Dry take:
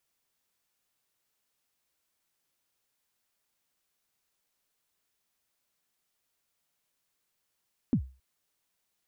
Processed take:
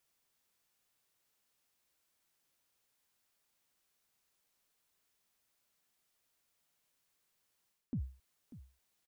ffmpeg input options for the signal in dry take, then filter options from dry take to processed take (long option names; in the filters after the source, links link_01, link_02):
-f lavfi -i "aevalsrc='0.126*pow(10,-3*t/0.33)*sin(2*PI*(290*0.082/log(65/290)*(exp(log(65/290)*min(t,0.082)/0.082)-1)+65*max(t-0.082,0)))':duration=0.27:sample_rate=44100"
-af "areverse,acompressor=threshold=-36dB:ratio=10,areverse,aecho=1:1:592:0.168"